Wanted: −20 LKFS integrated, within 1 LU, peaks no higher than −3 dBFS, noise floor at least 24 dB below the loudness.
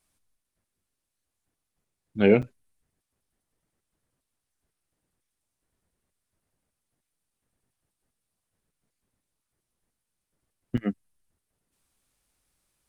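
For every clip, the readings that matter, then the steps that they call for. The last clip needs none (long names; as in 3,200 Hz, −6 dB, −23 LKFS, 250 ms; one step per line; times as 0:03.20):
number of dropouts 2; longest dropout 6.4 ms; integrated loudness −25.0 LKFS; sample peak −5.5 dBFS; target loudness −20.0 LKFS
→ repair the gap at 0:02.42/0:10.77, 6.4 ms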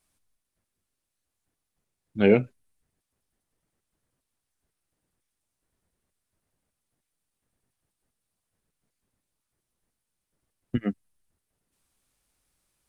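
number of dropouts 0; integrated loudness −25.0 LKFS; sample peak −5.5 dBFS; target loudness −20.0 LKFS
→ level +5 dB
brickwall limiter −3 dBFS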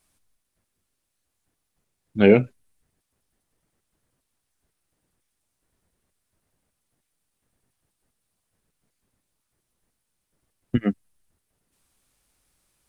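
integrated loudness −20.5 LKFS; sample peak −3.0 dBFS; background noise floor −79 dBFS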